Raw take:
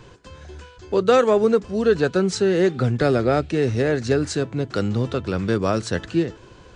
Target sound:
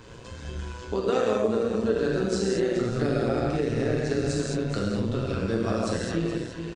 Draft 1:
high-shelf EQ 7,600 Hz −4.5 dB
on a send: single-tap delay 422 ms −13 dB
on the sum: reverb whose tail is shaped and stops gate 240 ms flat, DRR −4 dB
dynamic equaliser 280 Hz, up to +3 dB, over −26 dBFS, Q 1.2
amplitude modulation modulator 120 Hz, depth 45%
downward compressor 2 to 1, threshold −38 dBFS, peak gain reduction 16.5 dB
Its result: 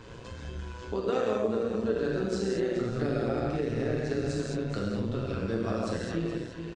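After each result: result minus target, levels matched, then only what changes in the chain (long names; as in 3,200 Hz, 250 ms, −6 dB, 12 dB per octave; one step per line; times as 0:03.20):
8,000 Hz band −4.0 dB; downward compressor: peak gain reduction +4 dB
change: high-shelf EQ 7,600 Hz +5.5 dB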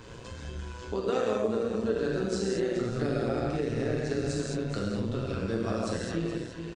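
downward compressor: peak gain reduction +4 dB
change: downward compressor 2 to 1, threshold −30 dBFS, peak gain reduction 12.5 dB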